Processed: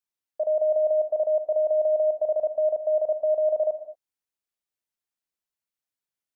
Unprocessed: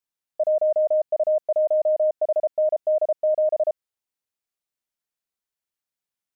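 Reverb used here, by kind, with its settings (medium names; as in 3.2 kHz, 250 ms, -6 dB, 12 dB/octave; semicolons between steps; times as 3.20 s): gated-style reverb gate 250 ms flat, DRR 9.5 dB; trim -3.5 dB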